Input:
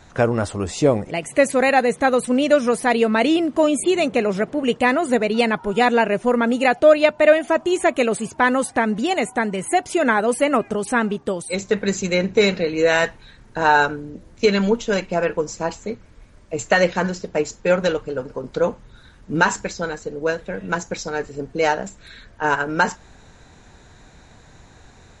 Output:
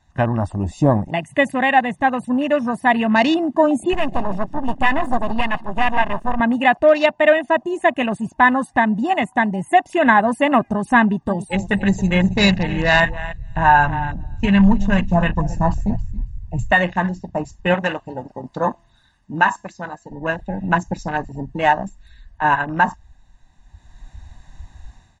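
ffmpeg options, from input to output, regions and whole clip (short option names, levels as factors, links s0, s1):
-filter_complex "[0:a]asettb=1/sr,asplit=3[s0][s1][s2];[s0]atrim=end=3.934[s3];[s1]atrim=start=3.93:end=6.4,asetpts=PTS-STARTPTS,afade=t=in:d=0.004:c=qsin,afade=t=out:st=2.466:d=0.004:c=qsin,bandreject=f=50.97:t=h:w=4,bandreject=f=101.94:t=h:w=4,bandreject=f=152.91:t=h:w=4,aecho=1:1:150:0.2,atrim=end_sample=108927,aeval=exprs='max(val(0),0)':c=same[s4];[s2]atrim=start=6.396[s5];[s3][s4]acrossfade=d=0.004:c1=hsin:c2=qsin[s6];[s6][s5]acrossfade=d=0.004:c1=qsin:c2=hsin,asettb=1/sr,asplit=3[s7][s8][s9];[s7]atrim=end=11.004[s10];[s8]atrim=start=11:end=16.72,asetpts=PTS-STARTPTS,afade=t=in:d=0.004:c=qsin,afade=t=out:st=5.716:d=0.004:c=qsin,asubboost=boost=7.5:cutoff=130,aecho=1:1:275|550|825:0.224|0.0627|0.0176,atrim=end_sample=252252[s11];[s9]atrim=start=16.716[s12];[s10][s11]acrossfade=d=0.004:c1=hsin:c2=qsin[s13];[s13][s12]acrossfade=d=0.004:c1=qsin:c2=hsin,asettb=1/sr,asplit=3[s14][s15][s16];[s14]atrim=end=17.744[s17];[s15]atrim=start=17.74:end=20.11,asetpts=PTS-STARTPTS,afade=t=in:d=0.004:c=qsin,afade=t=out:st=2.366:d=0.004:c=qsin,lowshelf=f=340:g=-9,bandreject=f=338.4:t=h:w=4,bandreject=f=676.8:t=h:w=4,bandreject=f=1015.2:t=h:w=4,bandreject=f=1353.6:t=h:w=4,bandreject=f=1692:t=h:w=4,bandreject=f=2030.4:t=h:w=4,bandreject=f=2368.8:t=h:w=4,bandreject=f=2707.2:t=h:w=4,bandreject=f=3045.6:t=h:w=4,bandreject=f=3384:t=h:w=4,bandreject=f=3722.4:t=h:w=4,bandreject=f=4060.8:t=h:w=4,bandreject=f=4399.2:t=h:w=4,bandreject=f=4737.6:t=h:w=4,bandreject=f=5076:t=h:w=4,bandreject=f=5414.4:t=h:w=4,bandreject=f=5752.8:t=h:w=4,bandreject=f=6091.2:t=h:w=4,bandreject=f=6429.6:t=h:w=4,bandreject=f=6768:t=h:w=4,bandreject=f=7106.4:t=h:w=4,bandreject=f=7444.8:t=h:w=4,bandreject=f=7783.2:t=h:w=4,bandreject=f=8121.6:t=h:w=4,bandreject=f=8460:t=h:w=4,bandreject=f=8798.4:t=h:w=4,bandreject=f=9136.8:t=h:w=4,bandreject=f=9475.2:t=h:w=4,bandreject=f=9813.6:t=h:w=4[s18];[s16]atrim=start=20.106[s19];[s17][s18]acrossfade=d=0.004:c1=hsin:c2=qsin[s20];[s20][s19]acrossfade=d=0.004:c1=qsin:c2=hsin,afwtdn=0.0355,aecho=1:1:1.1:0.79,dynaudnorm=f=430:g=3:m=3.76,volume=0.891"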